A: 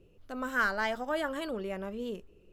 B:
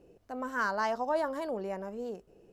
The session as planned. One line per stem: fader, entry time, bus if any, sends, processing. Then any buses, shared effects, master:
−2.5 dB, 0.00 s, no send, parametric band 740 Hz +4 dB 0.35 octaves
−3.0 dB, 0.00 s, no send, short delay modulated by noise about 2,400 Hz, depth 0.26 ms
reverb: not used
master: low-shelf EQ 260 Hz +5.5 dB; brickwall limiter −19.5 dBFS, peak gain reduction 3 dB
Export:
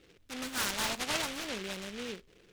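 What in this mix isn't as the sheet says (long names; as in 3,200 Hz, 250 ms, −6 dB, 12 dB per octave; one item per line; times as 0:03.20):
stem A −2.5 dB → −13.0 dB
master: missing low-shelf EQ 260 Hz +5.5 dB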